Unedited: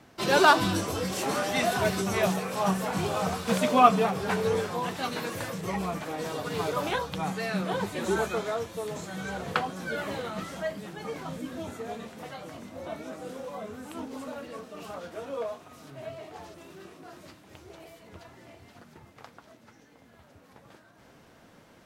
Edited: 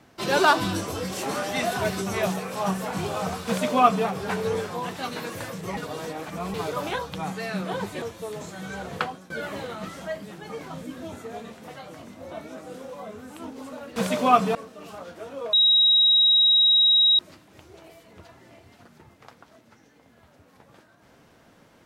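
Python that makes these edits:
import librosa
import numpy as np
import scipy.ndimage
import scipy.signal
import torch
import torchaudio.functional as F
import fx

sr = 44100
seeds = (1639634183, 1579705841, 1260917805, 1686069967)

y = fx.edit(x, sr, fx.duplicate(start_s=3.47, length_s=0.59, to_s=14.51),
    fx.reverse_span(start_s=5.77, length_s=0.77),
    fx.cut(start_s=8.02, length_s=0.55),
    fx.fade_out_to(start_s=9.56, length_s=0.29, floor_db=-17.5),
    fx.bleep(start_s=15.49, length_s=1.66, hz=3820.0, db=-14.5), tone=tone)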